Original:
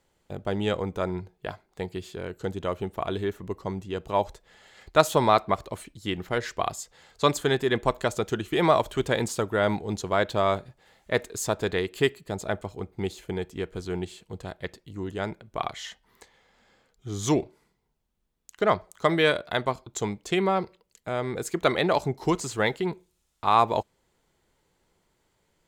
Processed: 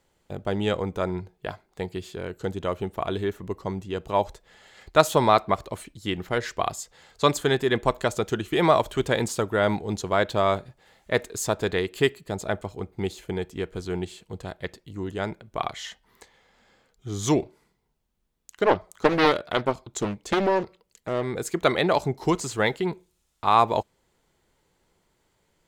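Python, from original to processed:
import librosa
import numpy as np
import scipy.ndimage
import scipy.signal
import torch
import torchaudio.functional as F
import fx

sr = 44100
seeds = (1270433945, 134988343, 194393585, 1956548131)

y = fx.doppler_dist(x, sr, depth_ms=0.72, at=(18.64, 21.23))
y = F.gain(torch.from_numpy(y), 1.5).numpy()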